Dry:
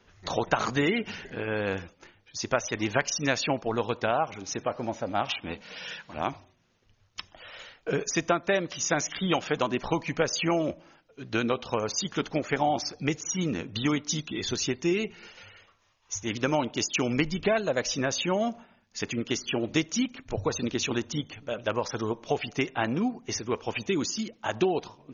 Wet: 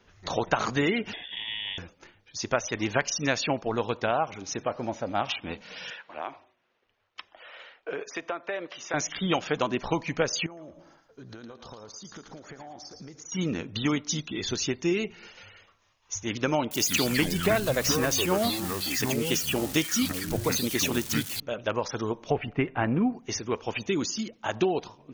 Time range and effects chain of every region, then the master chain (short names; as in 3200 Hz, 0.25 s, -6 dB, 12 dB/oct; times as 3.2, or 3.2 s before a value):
1.13–1.78 fixed phaser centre 920 Hz, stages 4 + inverted band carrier 3500 Hz + three-band squash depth 70%
5.9–8.94 three-band isolator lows -20 dB, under 330 Hz, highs -19 dB, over 3600 Hz + compressor 3:1, threshold -29 dBFS
10.46–13.32 bell 2600 Hz -12 dB 0.62 oct + compressor 16:1, threshold -40 dBFS + thinning echo 0.112 s, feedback 37%, high-pass 980 Hz, level -6.5 dB
16.71–21.4 switching spikes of -29.5 dBFS + high shelf 4900 Hz +4.5 dB + echoes that change speed 0.113 s, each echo -6 st, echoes 2, each echo -6 dB
22.3–23.13 LPF 2500 Hz 24 dB/oct + low shelf 150 Hz +9.5 dB
whole clip: dry